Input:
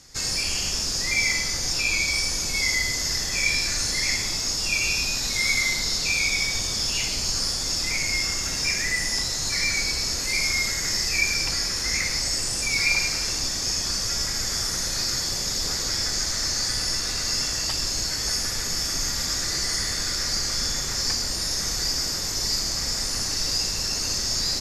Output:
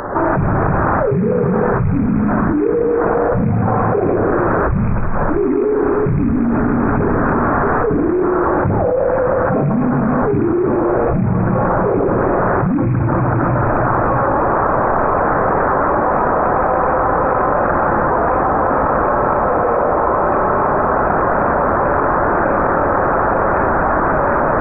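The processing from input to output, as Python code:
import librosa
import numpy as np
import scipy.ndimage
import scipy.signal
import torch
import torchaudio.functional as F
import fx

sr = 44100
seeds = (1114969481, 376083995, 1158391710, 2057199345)

y = scipy.signal.sosfilt(scipy.signal.butter(4, 1100.0, 'highpass', fs=sr, output='sos'), x)
y = 10.0 ** (-13.5 / 20.0) * np.tanh(y / 10.0 ** (-13.5 / 20.0))
y = fx.volume_shaper(y, sr, bpm=90, per_beat=1, depth_db=-8, release_ms=221.0, shape='slow start')
y = fx.echo_feedback(y, sr, ms=312, feedback_pct=60, wet_db=-13.5)
y = fx.freq_invert(y, sr, carrier_hz=2500)
y = fx.env_flatten(y, sr, amount_pct=100)
y = y * 10.0 ** (7.0 / 20.0)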